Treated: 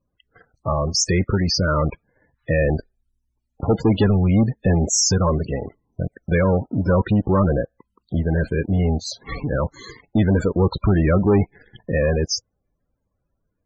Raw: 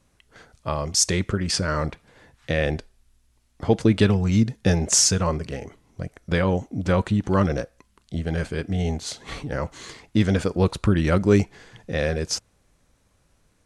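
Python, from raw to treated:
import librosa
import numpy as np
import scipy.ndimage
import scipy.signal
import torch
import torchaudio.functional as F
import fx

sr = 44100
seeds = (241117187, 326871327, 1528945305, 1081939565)

y = fx.leveller(x, sr, passes=3)
y = fx.spec_topn(y, sr, count=32)
y = y * librosa.db_to_amplitude(-4.0)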